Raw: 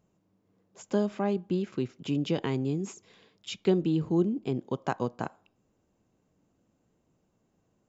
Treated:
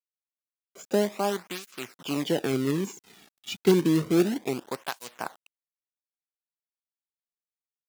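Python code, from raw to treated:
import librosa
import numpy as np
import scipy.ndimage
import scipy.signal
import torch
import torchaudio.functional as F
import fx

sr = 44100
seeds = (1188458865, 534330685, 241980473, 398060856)

y = fx.quant_companded(x, sr, bits=4)
y = fx.flanger_cancel(y, sr, hz=0.3, depth_ms=2.1)
y = y * librosa.db_to_amplitude(5.0)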